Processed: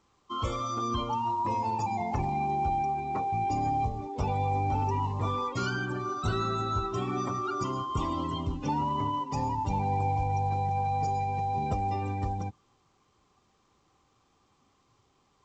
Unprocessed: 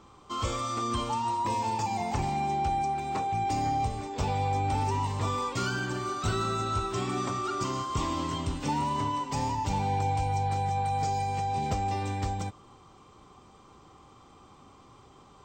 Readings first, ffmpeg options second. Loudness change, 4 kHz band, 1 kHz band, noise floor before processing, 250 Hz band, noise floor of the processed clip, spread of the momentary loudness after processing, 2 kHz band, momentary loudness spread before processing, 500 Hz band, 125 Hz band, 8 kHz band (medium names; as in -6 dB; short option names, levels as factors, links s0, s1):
-0.5 dB, -4.0 dB, 0.0 dB, -55 dBFS, 0.0 dB, -69 dBFS, 4 LU, -2.0 dB, 4 LU, -0.5 dB, 0.0 dB, -8.0 dB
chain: -af "afftdn=nr=16:nf=-37" -ar 16000 -c:a pcm_alaw